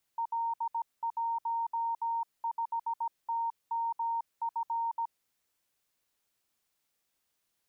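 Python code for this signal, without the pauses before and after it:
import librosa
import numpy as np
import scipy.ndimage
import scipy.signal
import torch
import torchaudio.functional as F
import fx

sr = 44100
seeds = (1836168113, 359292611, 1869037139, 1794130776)

y = fx.morse(sr, text='L15TMF', wpm=17, hz=923.0, level_db=-29.0)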